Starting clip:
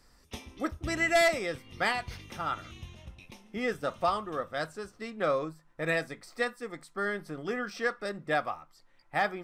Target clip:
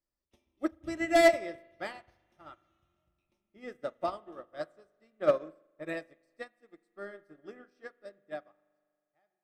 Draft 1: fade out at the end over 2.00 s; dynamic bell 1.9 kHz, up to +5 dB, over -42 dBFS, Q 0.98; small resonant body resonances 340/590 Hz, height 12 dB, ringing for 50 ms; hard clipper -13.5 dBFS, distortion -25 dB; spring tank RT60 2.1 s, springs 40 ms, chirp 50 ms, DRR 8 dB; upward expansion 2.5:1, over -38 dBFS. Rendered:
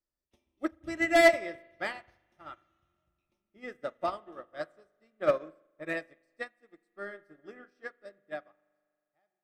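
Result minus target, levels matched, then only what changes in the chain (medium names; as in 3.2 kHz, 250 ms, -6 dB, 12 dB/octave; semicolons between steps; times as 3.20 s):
2 kHz band +4.0 dB
remove: dynamic bell 1.9 kHz, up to +5 dB, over -42 dBFS, Q 0.98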